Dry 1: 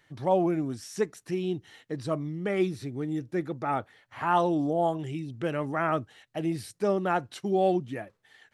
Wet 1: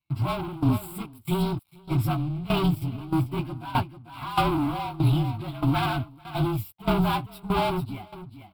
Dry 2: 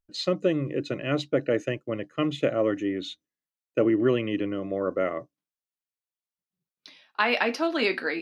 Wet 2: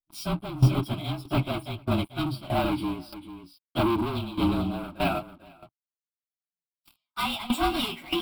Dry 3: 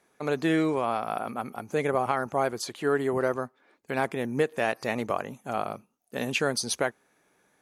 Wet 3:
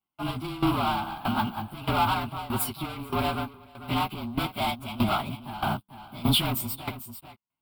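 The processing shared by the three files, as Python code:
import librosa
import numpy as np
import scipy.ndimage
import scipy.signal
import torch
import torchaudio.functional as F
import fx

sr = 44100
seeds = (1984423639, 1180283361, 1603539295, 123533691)

y = fx.partial_stretch(x, sr, pct=111)
y = fx.leveller(y, sr, passes=5)
y = fx.high_shelf(y, sr, hz=7400.0, db=5.5)
y = fx.fixed_phaser(y, sr, hz=1800.0, stages=6)
y = y + 10.0 ** (-11.5 / 20.0) * np.pad(y, (int(444 * sr / 1000.0), 0))[:len(y)]
y = fx.tremolo_shape(y, sr, shape='saw_down', hz=1.6, depth_pct=80)
y = fx.low_shelf(y, sr, hz=440.0, db=4.0)
y = fx.upward_expand(y, sr, threshold_db=-32.0, expansion=1.5)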